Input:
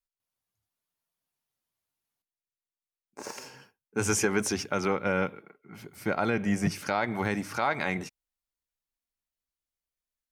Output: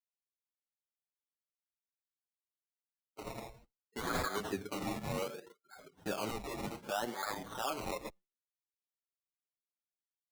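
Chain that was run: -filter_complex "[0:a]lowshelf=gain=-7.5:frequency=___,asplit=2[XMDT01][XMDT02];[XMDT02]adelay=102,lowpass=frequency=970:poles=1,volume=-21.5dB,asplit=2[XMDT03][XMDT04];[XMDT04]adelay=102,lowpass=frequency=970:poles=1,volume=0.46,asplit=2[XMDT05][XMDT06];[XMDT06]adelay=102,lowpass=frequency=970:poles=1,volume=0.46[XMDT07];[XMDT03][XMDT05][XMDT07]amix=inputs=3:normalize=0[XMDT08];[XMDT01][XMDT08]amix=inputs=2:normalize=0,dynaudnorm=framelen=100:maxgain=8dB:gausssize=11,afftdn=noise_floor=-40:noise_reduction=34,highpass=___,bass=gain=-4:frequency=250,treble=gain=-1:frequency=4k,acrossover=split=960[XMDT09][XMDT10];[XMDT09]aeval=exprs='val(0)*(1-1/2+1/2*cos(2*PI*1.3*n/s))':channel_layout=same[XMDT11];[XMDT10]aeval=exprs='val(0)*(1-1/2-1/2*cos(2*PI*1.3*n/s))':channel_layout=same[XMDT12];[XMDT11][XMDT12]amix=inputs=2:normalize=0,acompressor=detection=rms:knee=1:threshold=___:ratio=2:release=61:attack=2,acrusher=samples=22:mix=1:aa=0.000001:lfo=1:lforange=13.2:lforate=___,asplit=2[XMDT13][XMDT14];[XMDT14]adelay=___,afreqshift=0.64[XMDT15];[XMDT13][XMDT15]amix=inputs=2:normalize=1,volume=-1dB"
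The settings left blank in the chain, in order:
290, 57, -32dB, 0.65, 7.2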